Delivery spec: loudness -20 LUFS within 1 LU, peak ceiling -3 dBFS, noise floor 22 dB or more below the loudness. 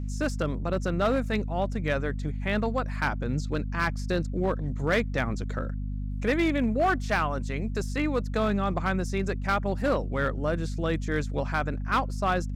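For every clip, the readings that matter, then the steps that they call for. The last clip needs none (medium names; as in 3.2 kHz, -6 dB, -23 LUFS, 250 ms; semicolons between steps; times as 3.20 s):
clipped samples 0.9%; clipping level -18.0 dBFS; hum 50 Hz; highest harmonic 250 Hz; hum level -29 dBFS; loudness -28.5 LUFS; peak level -18.0 dBFS; loudness target -20.0 LUFS
-> clip repair -18 dBFS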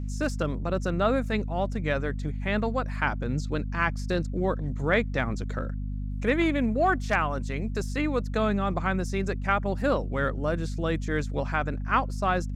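clipped samples 0.0%; hum 50 Hz; highest harmonic 250 Hz; hum level -29 dBFS
-> hum notches 50/100/150/200/250 Hz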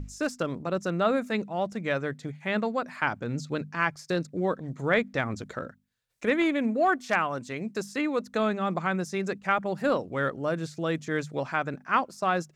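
hum not found; loudness -29.0 LUFS; peak level -11.0 dBFS; loudness target -20.0 LUFS
-> trim +9 dB; peak limiter -3 dBFS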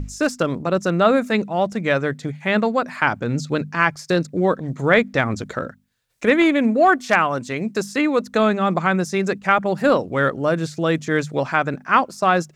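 loudness -20.0 LUFS; peak level -3.0 dBFS; noise floor -48 dBFS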